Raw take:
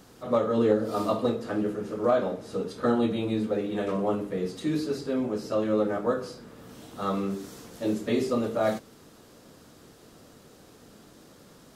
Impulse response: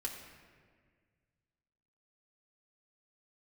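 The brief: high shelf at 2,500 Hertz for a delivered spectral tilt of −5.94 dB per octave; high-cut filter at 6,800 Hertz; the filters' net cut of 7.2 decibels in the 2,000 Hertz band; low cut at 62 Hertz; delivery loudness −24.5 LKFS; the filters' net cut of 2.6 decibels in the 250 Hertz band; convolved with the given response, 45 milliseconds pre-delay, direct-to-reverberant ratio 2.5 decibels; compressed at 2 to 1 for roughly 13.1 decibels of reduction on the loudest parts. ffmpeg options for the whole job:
-filter_complex "[0:a]highpass=62,lowpass=6800,equalizer=frequency=250:width_type=o:gain=-3,equalizer=frequency=2000:width_type=o:gain=-8.5,highshelf=frequency=2500:gain=-3.5,acompressor=threshold=-44dB:ratio=2,asplit=2[link_01][link_02];[1:a]atrim=start_sample=2205,adelay=45[link_03];[link_02][link_03]afir=irnorm=-1:irlink=0,volume=-2.5dB[link_04];[link_01][link_04]amix=inputs=2:normalize=0,volume=14dB"

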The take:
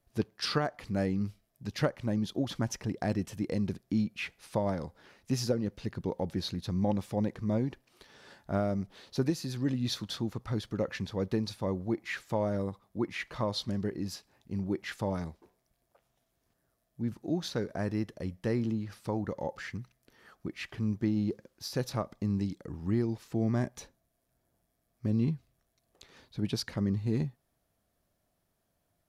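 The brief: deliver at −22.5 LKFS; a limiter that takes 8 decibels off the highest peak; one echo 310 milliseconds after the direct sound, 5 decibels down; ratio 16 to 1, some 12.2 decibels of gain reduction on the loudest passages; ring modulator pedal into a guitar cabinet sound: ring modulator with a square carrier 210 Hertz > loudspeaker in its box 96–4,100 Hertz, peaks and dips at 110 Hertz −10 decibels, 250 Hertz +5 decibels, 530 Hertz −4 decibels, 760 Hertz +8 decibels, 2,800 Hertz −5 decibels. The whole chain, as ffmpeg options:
ffmpeg -i in.wav -af "acompressor=threshold=-36dB:ratio=16,alimiter=level_in=9.5dB:limit=-24dB:level=0:latency=1,volume=-9.5dB,aecho=1:1:310:0.562,aeval=exprs='val(0)*sgn(sin(2*PI*210*n/s))':channel_layout=same,highpass=96,equalizer=frequency=110:width_type=q:width=4:gain=-10,equalizer=frequency=250:width_type=q:width=4:gain=5,equalizer=frequency=530:width_type=q:width=4:gain=-4,equalizer=frequency=760:width_type=q:width=4:gain=8,equalizer=frequency=2800:width_type=q:width=4:gain=-5,lowpass=frequency=4100:width=0.5412,lowpass=frequency=4100:width=1.3066,volume=21dB" out.wav

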